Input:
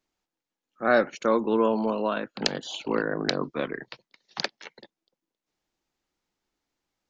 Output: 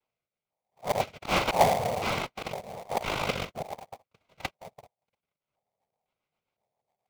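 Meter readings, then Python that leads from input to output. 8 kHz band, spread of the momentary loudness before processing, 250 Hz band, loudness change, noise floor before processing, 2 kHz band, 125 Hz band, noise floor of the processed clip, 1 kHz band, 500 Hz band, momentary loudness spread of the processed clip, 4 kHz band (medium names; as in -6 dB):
no reading, 14 LU, -10.5 dB, -3.0 dB, under -85 dBFS, -3.0 dB, +3.0 dB, under -85 dBFS, +2.0 dB, -5.0 dB, 16 LU, -2.5 dB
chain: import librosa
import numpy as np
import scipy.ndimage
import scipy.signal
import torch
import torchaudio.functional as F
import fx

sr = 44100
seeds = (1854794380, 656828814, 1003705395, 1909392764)

p1 = fx.noise_vocoder(x, sr, seeds[0], bands=1)
p2 = fx.rotary_switch(p1, sr, hz=1.2, then_hz=7.5, switch_at_s=3.79)
p3 = fx.filter_lfo_lowpass(p2, sr, shape='square', hz=0.99, low_hz=770.0, high_hz=2000.0, q=3.5)
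p4 = fx.fixed_phaser(p3, sr, hz=740.0, stages=4)
p5 = fx.auto_swell(p4, sr, attack_ms=105.0)
p6 = fx.sample_hold(p5, sr, seeds[1], rate_hz=1500.0, jitter_pct=20)
p7 = p5 + (p6 * librosa.db_to_amplitude(-4.0))
y = p7 * librosa.db_to_amplitude(5.5)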